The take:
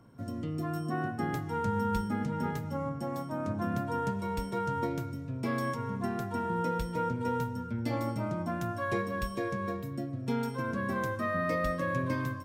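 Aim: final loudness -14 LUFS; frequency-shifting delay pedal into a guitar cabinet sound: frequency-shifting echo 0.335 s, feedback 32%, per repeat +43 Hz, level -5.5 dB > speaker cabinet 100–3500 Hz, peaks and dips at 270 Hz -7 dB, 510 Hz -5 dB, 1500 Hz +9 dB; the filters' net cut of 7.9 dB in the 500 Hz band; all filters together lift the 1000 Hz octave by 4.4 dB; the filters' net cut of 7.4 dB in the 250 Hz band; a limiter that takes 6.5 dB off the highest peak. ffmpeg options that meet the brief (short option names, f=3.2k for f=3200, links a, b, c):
-filter_complex "[0:a]equalizer=f=250:t=o:g=-5.5,equalizer=f=500:t=o:g=-6.5,equalizer=f=1k:t=o:g=4.5,alimiter=level_in=1.5dB:limit=-24dB:level=0:latency=1,volume=-1.5dB,asplit=5[a][b][c][d][e];[b]adelay=335,afreqshift=43,volume=-5.5dB[f];[c]adelay=670,afreqshift=86,volume=-15.4dB[g];[d]adelay=1005,afreqshift=129,volume=-25.3dB[h];[e]adelay=1340,afreqshift=172,volume=-35.2dB[i];[a][f][g][h][i]amix=inputs=5:normalize=0,highpass=100,equalizer=f=270:t=q:w=4:g=-7,equalizer=f=510:t=q:w=4:g=-5,equalizer=f=1.5k:t=q:w=4:g=9,lowpass=f=3.5k:w=0.5412,lowpass=f=3.5k:w=1.3066,volume=18.5dB"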